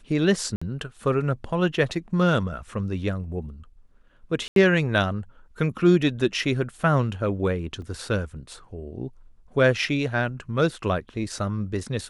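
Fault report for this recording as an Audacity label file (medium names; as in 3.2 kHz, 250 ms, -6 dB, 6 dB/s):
0.560000	0.610000	dropout 55 ms
4.480000	4.560000	dropout 82 ms
7.820000	7.820000	dropout 2.2 ms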